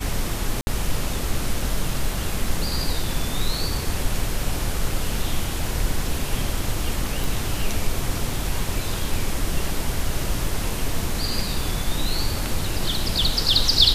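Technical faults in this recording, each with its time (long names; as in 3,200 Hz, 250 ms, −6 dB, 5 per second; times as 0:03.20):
0:00.61–0:00.67: drop-out 61 ms
0:07.24: click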